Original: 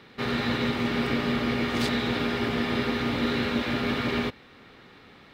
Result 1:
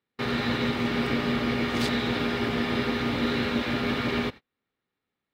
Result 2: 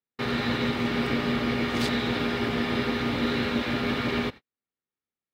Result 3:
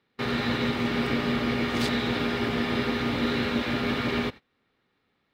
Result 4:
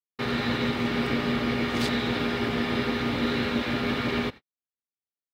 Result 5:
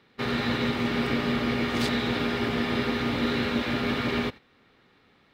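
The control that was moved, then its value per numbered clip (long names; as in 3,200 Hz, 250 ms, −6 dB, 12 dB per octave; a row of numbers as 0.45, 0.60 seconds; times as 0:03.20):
noise gate, range: −34, −47, −22, −60, −10 decibels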